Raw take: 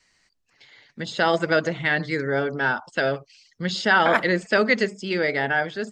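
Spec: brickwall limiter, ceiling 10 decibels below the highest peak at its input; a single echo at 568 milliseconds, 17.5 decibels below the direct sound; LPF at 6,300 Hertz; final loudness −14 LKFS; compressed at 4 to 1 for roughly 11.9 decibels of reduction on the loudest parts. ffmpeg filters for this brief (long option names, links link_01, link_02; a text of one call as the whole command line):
ffmpeg -i in.wav -af "lowpass=6300,acompressor=threshold=-29dB:ratio=4,alimiter=limit=-23.5dB:level=0:latency=1,aecho=1:1:568:0.133,volume=20.5dB" out.wav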